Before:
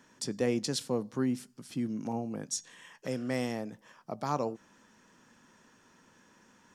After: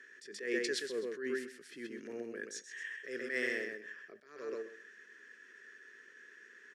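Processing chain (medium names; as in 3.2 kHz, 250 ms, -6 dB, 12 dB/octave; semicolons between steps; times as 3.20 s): two resonant band-passes 840 Hz, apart 2.1 oct; tilt EQ +4 dB/octave; feedback delay 129 ms, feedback 18%, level -5.5 dB; attacks held to a fixed rise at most 100 dB/s; trim +11 dB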